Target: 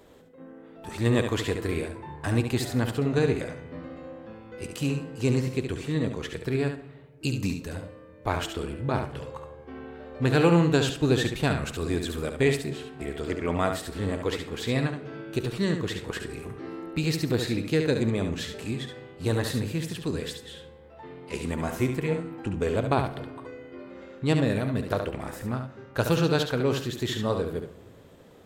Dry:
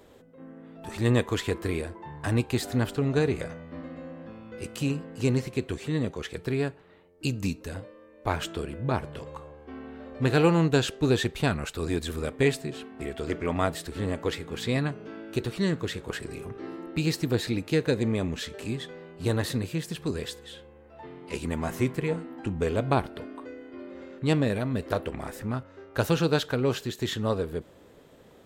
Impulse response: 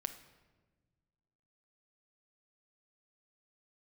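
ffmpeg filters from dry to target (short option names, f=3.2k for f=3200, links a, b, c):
-filter_complex "[0:a]asplit=2[a][b];[1:a]atrim=start_sample=2205,adelay=70[c];[b][c]afir=irnorm=-1:irlink=0,volume=-5.5dB[d];[a][d]amix=inputs=2:normalize=0"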